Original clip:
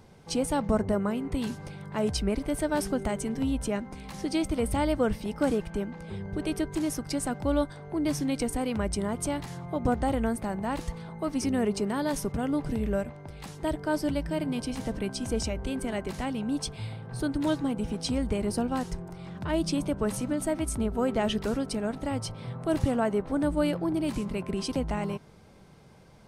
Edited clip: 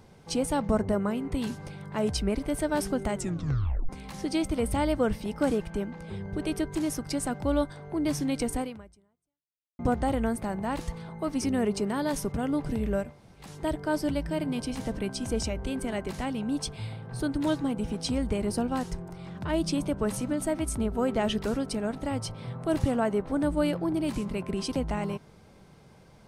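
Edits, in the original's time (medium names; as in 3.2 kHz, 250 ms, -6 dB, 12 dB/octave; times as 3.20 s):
3.16 s: tape stop 0.73 s
8.60–9.79 s: fade out exponential
13.11–13.43 s: room tone, crossfade 0.24 s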